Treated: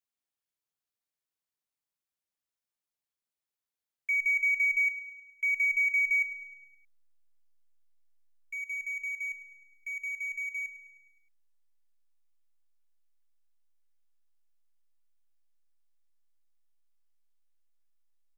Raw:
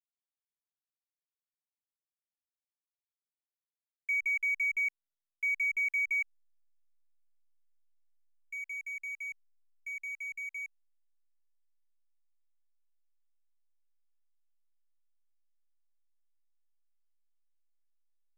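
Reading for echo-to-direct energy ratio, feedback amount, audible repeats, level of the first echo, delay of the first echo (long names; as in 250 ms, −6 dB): −13.0 dB, 56%, 5, −14.5 dB, 104 ms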